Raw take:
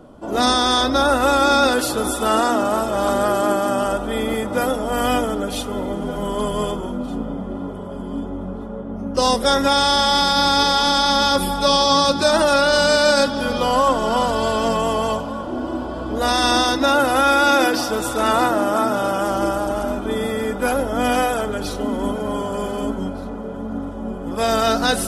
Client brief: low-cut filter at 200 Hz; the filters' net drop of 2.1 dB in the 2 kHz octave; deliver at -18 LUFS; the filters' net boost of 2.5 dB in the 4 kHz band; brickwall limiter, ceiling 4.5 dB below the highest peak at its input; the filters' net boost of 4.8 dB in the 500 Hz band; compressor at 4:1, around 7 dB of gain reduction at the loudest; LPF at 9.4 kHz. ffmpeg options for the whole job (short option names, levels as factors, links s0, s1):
-af "highpass=200,lowpass=9400,equalizer=f=500:t=o:g=6,equalizer=f=2000:t=o:g=-5,equalizer=f=4000:t=o:g=4.5,acompressor=threshold=0.141:ratio=4,volume=1.58,alimiter=limit=0.422:level=0:latency=1"